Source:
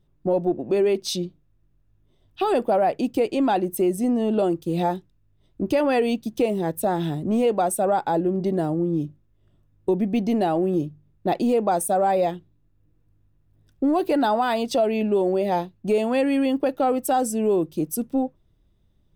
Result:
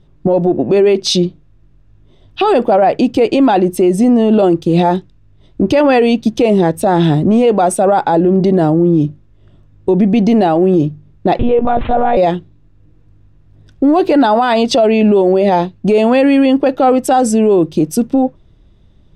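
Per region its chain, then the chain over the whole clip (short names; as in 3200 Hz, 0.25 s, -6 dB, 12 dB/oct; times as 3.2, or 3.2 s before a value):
11.39–12.17 median filter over 9 samples + resonant low shelf 180 Hz +11 dB, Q 3 + monotone LPC vocoder at 8 kHz 240 Hz
whole clip: LPF 5800 Hz 12 dB/oct; maximiser +19 dB; gain -3 dB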